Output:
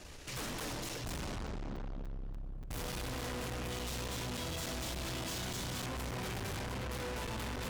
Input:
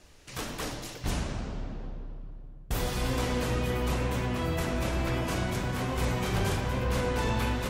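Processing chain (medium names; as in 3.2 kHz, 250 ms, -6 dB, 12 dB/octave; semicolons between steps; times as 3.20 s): 3.70–5.86 s: high-order bell 5.1 kHz +10.5 dB; valve stage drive 46 dB, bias 0.4; crackling interface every 0.29 s, samples 256, zero, from 0.60 s; trim +7.5 dB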